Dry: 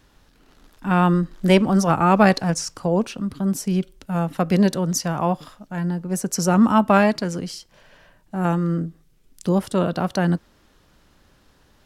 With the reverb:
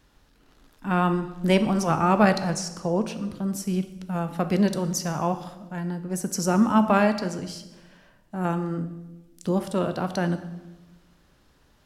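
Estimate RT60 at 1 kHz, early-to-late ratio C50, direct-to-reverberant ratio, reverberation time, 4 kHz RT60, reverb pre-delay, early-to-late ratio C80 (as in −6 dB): 1.0 s, 11.5 dB, 9.0 dB, 1.1 s, 0.95 s, 9 ms, 13.5 dB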